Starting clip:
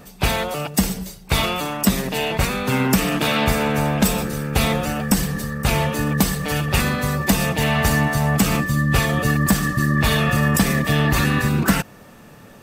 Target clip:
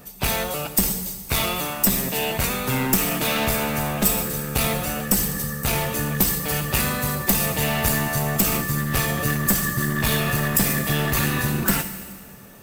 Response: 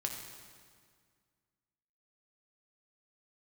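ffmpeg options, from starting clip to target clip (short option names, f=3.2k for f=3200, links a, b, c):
-filter_complex "[0:a]aeval=exprs='clip(val(0),-1,0.126)':c=same,asplit=2[a][b];[b]aemphasis=mode=production:type=75fm[c];[1:a]atrim=start_sample=2205[d];[c][d]afir=irnorm=-1:irlink=0,volume=-4.5dB[e];[a][e]amix=inputs=2:normalize=0,volume=-7dB"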